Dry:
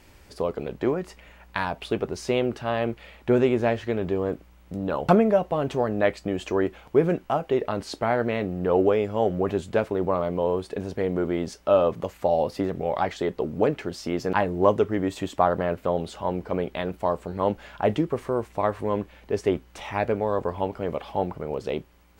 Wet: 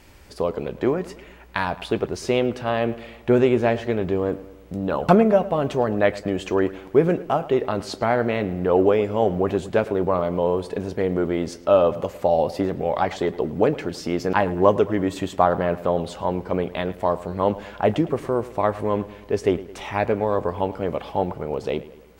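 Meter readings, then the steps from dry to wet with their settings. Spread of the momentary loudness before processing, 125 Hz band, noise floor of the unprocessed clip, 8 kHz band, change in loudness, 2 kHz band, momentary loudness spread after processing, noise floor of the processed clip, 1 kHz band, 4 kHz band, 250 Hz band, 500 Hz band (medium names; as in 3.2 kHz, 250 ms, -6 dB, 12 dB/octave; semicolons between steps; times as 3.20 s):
9 LU, +3.0 dB, -53 dBFS, no reading, +3.0 dB, +3.0 dB, 9 LU, -45 dBFS, +3.0 dB, +3.0 dB, +3.0 dB, +3.0 dB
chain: filtered feedback delay 108 ms, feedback 54%, low-pass 4.2 kHz, level -17 dB; trim +3 dB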